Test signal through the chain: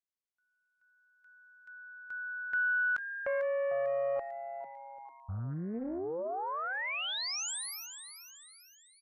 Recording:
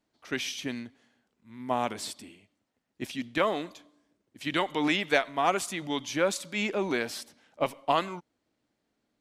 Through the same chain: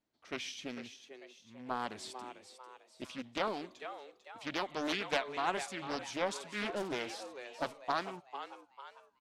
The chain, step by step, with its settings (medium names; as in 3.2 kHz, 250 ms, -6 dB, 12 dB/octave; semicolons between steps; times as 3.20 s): low-pass 8.8 kHz 12 dB/octave; on a send: frequency-shifting echo 447 ms, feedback 43%, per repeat +130 Hz, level -10.5 dB; on the sum: loudspeaker Doppler distortion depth 0.64 ms; trim -8 dB